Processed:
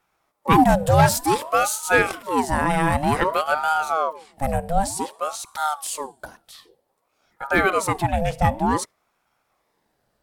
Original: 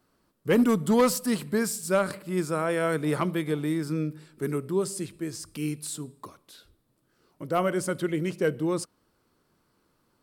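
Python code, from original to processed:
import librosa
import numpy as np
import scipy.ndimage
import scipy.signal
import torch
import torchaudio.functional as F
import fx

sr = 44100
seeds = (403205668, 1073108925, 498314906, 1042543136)

y = fx.noise_reduce_blind(x, sr, reduce_db=7)
y = fx.ring_lfo(y, sr, carrier_hz=710.0, swing_pct=55, hz=0.54)
y = y * librosa.db_to_amplitude(9.0)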